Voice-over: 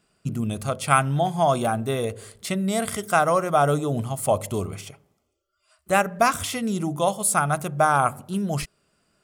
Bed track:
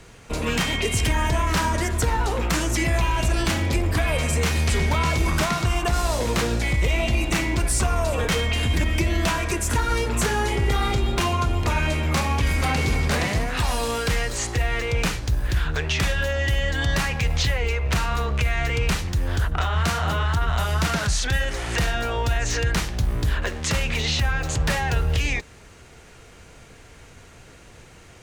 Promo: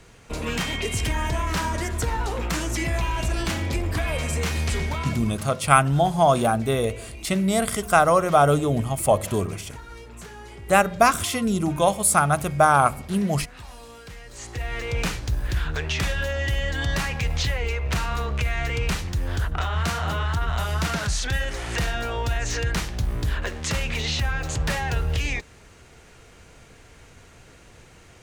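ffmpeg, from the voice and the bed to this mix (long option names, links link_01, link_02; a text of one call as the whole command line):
ffmpeg -i stem1.wav -i stem2.wav -filter_complex "[0:a]adelay=4800,volume=2.5dB[link_01];[1:a]volume=12.5dB,afade=type=out:start_time=4.72:duration=0.68:silence=0.177828,afade=type=in:start_time=14.24:duration=0.77:silence=0.158489[link_02];[link_01][link_02]amix=inputs=2:normalize=0" out.wav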